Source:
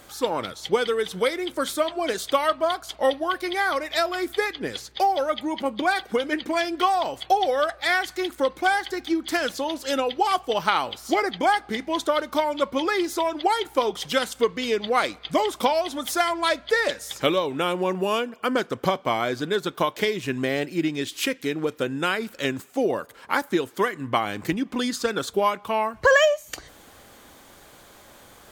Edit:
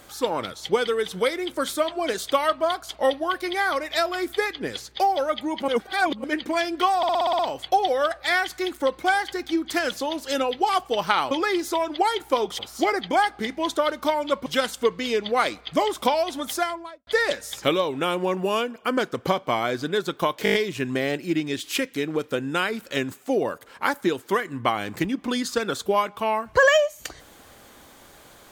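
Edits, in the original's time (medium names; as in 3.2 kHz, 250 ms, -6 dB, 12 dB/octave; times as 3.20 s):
5.68–6.24 s: reverse
6.97 s: stutter 0.06 s, 8 plays
12.76–14.04 s: move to 10.89 s
16.03–16.65 s: studio fade out
20.02 s: stutter 0.02 s, 6 plays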